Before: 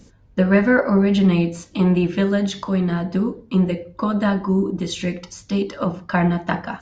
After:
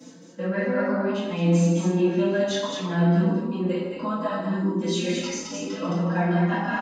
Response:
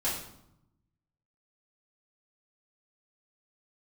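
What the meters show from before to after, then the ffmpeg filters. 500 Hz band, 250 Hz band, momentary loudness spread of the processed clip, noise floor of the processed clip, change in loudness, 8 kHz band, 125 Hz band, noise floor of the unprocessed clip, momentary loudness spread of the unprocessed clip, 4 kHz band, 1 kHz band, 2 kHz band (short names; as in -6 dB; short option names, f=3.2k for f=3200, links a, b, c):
-3.0 dB, -5.0 dB, 9 LU, -44 dBFS, -4.0 dB, n/a, -3.0 dB, -50 dBFS, 9 LU, -1.0 dB, -3.0 dB, -5.5 dB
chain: -filter_complex "[0:a]highpass=f=200:w=0.5412,highpass=f=200:w=1.3066,areverse,acompressor=threshold=-35dB:ratio=5,areverse,aecho=1:1:46.65|139.9|215.7:0.316|0.282|0.631[a];[1:a]atrim=start_sample=2205[b];[a][b]afir=irnorm=-1:irlink=0,asplit=2[c][d];[d]adelay=4.2,afreqshift=0.7[e];[c][e]amix=inputs=2:normalize=1,volume=4.5dB"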